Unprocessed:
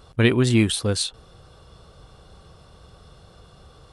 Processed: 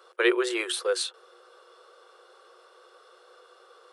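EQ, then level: rippled Chebyshev high-pass 350 Hz, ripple 9 dB; +3.0 dB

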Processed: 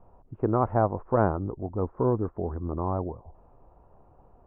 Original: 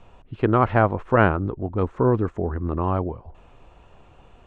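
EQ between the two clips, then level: four-pole ladder low-pass 1.2 kHz, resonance 25%; 0.0 dB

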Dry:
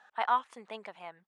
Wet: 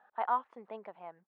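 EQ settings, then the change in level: band-pass filter 770 Hz, Q 0.58; tilt EQ -3.5 dB/octave; -2.5 dB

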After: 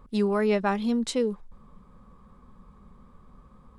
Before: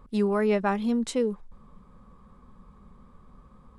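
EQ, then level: dynamic bell 4.3 kHz, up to +5 dB, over -52 dBFS, Q 1.3; 0.0 dB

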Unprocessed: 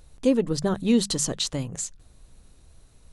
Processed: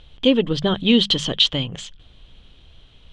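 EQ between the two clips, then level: resonant low-pass 3.2 kHz, resonance Q 11; +4.0 dB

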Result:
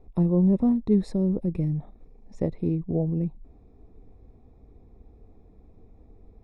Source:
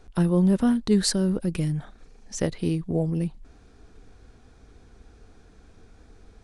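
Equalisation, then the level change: boxcar filter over 29 samples; 0.0 dB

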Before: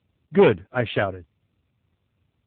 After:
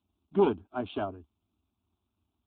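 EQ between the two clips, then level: dynamic bell 2.2 kHz, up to -6 dB, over -37 dBFS, Q 1.1; static phaser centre 510 Hz, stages 6; -4.0 dB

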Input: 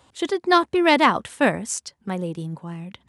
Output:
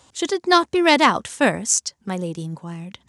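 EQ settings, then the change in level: peaking EQ 6.4 kHz +10.5 dB 1 oct; +1.0 dB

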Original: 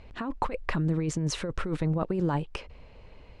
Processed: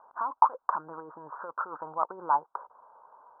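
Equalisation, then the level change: resonant high-pass 950 Hz, resonance Q 4; steep low-pass 1.5 kHz 96 dB/octave; 0.0 dB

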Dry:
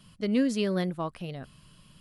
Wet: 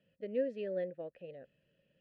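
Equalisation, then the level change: vowel filter e; tilt EQ -2 dB/octave; treble shelf 3.5 kHz -8 dB; 0.0 dB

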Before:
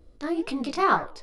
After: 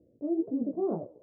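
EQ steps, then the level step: high-pass 110 Hz 24 dB/octave; Chebyshev low-pass 600 Hz, order 4; distance through air 450 m; 0.0 dB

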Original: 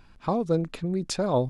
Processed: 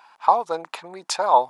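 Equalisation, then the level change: resonant high-pass 880 Hz, resonance Q 4.4; +5.0 dB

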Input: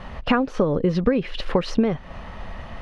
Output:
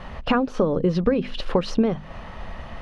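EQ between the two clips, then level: hum notches 50/100/150/200/250 Hz; dynamic bell 2 kHz, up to -5 dB, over -45 dBFS, Q 2.4; 0.0 dB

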